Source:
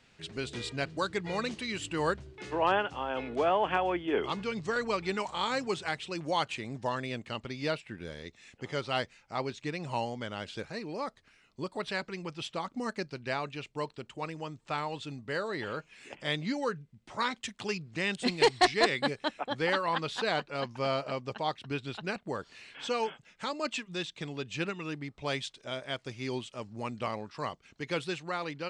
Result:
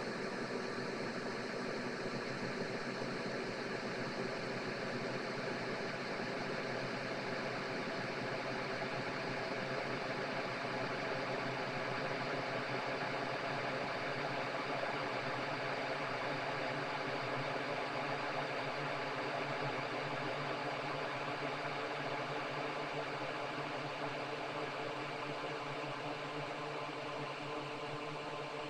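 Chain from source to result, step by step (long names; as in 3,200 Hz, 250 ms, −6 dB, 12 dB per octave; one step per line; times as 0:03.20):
gain on one half-wave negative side −3 dB
extreme stretch with random phases 42×, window 1.00 s, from 0:12.98
harmonic and percussive parts rebalanced harmonic −9 dB
level +2 dB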